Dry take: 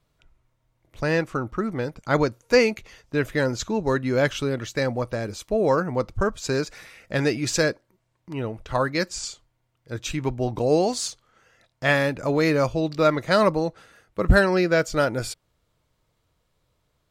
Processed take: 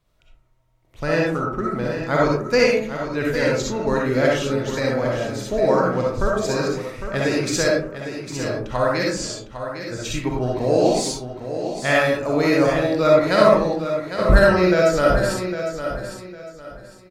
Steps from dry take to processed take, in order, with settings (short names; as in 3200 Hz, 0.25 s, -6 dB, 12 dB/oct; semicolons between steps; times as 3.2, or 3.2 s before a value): on a send: feedback echo 0.805 s, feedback 27%, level -9.5 dB; on the sum: digital reverb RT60 0.53 s, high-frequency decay 0.35×, pre-delay 20 ms, DRR -3 dB; gain -1.5 dB